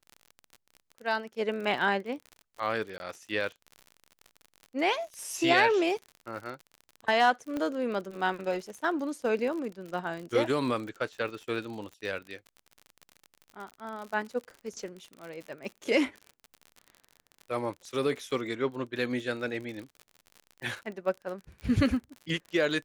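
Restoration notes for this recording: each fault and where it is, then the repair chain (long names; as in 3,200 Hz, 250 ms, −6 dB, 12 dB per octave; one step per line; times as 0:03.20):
surface crackle 51 per second −37 dBFS
0:02.98–0:03.00: drop-out 21 ms
0:07.57: click −21 dBFS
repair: click removal
repair the gap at 0:02.98, 21 ms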